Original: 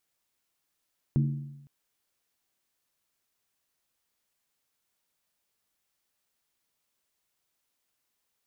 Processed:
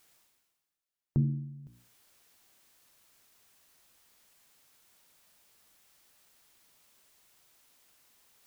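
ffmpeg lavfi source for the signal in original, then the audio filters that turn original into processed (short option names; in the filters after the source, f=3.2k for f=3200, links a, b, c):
-f lavfi -i "aevalsrc='0.106*pow(10,-3*t/0.95)*sin(2*PI*142*t)+0.0473*pow(10,-3*t/0.752)*sin(2*PI*226.3*t)+0.0211*pow(10,-3*t/0.65)*sin(2*PI*303.3*t)+0.00944*pow(10,-3*t/0.627)*sin(2*PI*326*t)+0.00422*pow(10,-3*t/0.583)*sin(2*PI*376.7*t)':d=0.51:s=44100"
-af "afftdn=nr=13:nf=-57,bandreject=f=60:t=h:w=6,bandreject=f=120:t=h:w=6,bandreject=f=180:t=h:w=6,bandreject=f=240:t=h:w=6,bandreject=f=300:t=h:w=6,bandreject=f=360:t=h:w=6,bandreject=f=420:t=h:w=6,bandreject=f=480:t=h:w=6,bandreject=f=540:t=h:w=6,areverse,acompressor=mode=upward:threshold=-43dB:ratio=2.5,areverse"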